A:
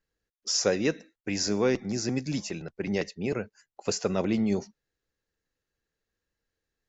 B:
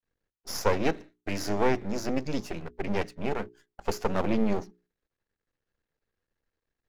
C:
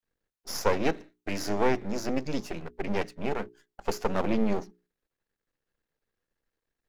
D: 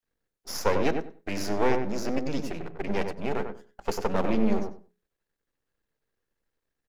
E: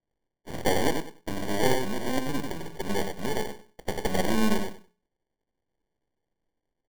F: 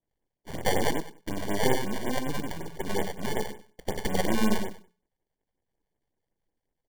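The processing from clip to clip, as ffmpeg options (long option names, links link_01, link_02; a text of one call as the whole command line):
ffmpeg -i in.wav -af "lowpass=frequency=1900:poles=1,aeval=exprs='max(val(0),0)':channel_layout=same,bandreject=frequency=60:width_type=h:width=6,bandreject=frequency=120:width_type=h:width=6,bandreject=frequency=180:width_type=h:width=6,bandreject=frequency=240:width_type=h:width=6,bandreject=frequency=300:width_type=h:width=6,bandreject=frequency=360:width_type=h:width=6,bandreject=frequency=420:width_type=h:width=6,volume=5.5dB" out.wav
ffmpeg -i in.wav -af "equalizer=frequency=80:width_type=o:width=1.1:gain=-5" out.wav
ffmpeg -i in.wav -filter_complex "[0:a]asplit=2[link_01][link_02];[link_02]adelay=95,lowpass=frequency=1300:poles=1,volume=-4.5dB,asplit=2[link_03][link_04];[link_04]adelay=95,lowpass=frequency=1300:poles=1,volume=0.2,asplit=2[link_05][link_06];[link_06]adelay=95,lowpass=frequency=1300:poles=1,volume=0.2[link_07];[link_01][link_03][link_05][link_07]amix=inputs=4:normalize=0" out.wav
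ffmpeg -i in.wav -af "acrusher=samples=34:mix=1:aa=0.000001" out.wav
ffmpeg -i in.wav -af "afftfilt=real='re*(1-between(b*sr/1024,250*pow(5100/250,0.5+0.5*sin(2*PI*5.4*pts/sr))/1.41,250*pow(5100/250,0.5+0.5*sin(2*PI*5.4*pts/sr))*1.41))':imag='im*(1-between(b*sr/1024,250*pow(5100/250,0.5+0.5*sin(2*PI*5.4*pts/sr))/1.41,250*pow(5100/250,0.5+0.5*sin(2*PI*5.4*pts/sr))*1.41))':win_size=1024:overlap=0.75" out.wav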